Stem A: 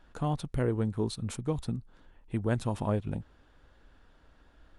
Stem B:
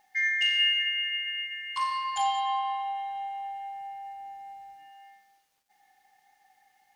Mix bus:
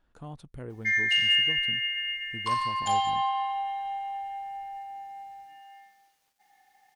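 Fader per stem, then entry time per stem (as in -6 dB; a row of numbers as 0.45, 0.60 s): -11.5, +1.5 dB; 0.00, 0.70 s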